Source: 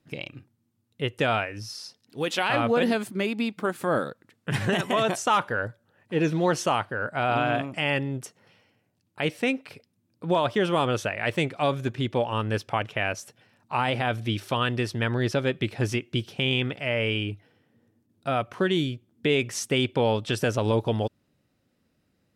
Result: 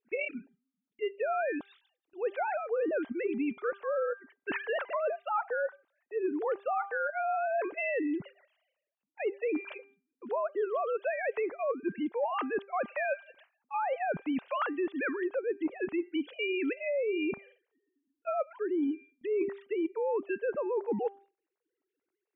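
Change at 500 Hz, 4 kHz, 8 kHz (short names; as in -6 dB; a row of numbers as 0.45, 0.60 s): -4.0 dB, -19.5 dB, under -40 dB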